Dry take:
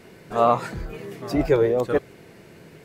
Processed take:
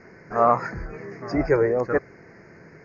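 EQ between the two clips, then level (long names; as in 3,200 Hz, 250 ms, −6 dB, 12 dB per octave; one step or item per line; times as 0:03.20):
Butterworth band-reject 3,300 Hz, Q 0.99
Chebyshev low-pass with heavy ripple 6,800 Hz, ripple 9 dB
high-frequency loss of the air 84 metres
+7.5 dB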